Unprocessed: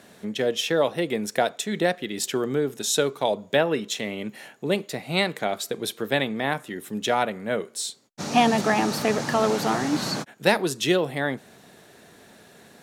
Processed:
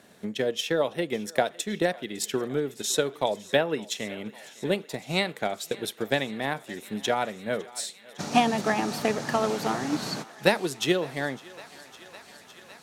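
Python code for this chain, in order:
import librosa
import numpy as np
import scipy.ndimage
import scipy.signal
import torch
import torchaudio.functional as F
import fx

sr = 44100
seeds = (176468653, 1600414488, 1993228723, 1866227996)

y = fx.echo_thinned(x, sr, ms=557, feedback_pct=85, hz=500.0, wet_db=-18.0)
y = fx.transient(y, sr, attack_db=5, sustain_db=-1)
y = y * 10.0 ** (-5.0 / 20.0)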